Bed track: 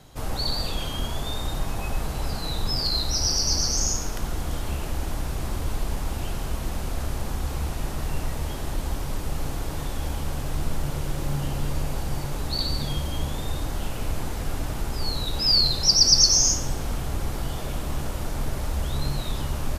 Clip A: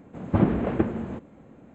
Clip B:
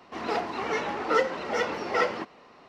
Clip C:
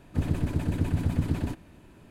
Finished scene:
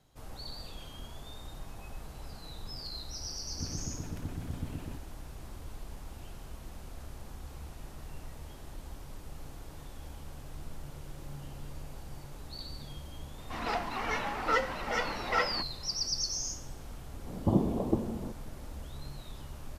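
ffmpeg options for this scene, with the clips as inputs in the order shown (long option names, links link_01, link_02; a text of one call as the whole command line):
ffmpeg -i bed.wav -i cue0.wav -i cue1.wav -i cue2.wav -filter_complex "[0:a]volume=-16.5dB[link_01];[2:a]equalizer=frequency=400:width=1.7:gain=-9.5[link_02];[1:a]asuperstop=centerf=2100:order=12:qfactor=0.74[link_03];[3:a]atrim=end=2.1,asetpts=PTS-STARTPTS,volume=-12.5dB,afade=type=in:duration=0.004:curve=hsin,afade=type=out:start_time=2.096:duration=0.004:curve=hsin,adelay=3440[link_04];[link_02]atrim=end=2.68,asetpts=PTS-STARTPTS,volume=-2dB,afade=type=in:duration=0.004:curve=hsin,afade=type=out:start_time=2.676:duration=0.004:curve=hsin,adelay=13380[link_05];[link_03]atrim=end=1.74,asetpts=PTS-STARTPTS,volume=-5.5dB,afade=type=in:duration=0.004:curve=hsin,afade=type=out:start_time=1.736:duration=0.004:curve=hsin,adelay=17130[link_06];[link_01][link_04][link_05][link_06]amix=inputs=4:normalize=0" out.wav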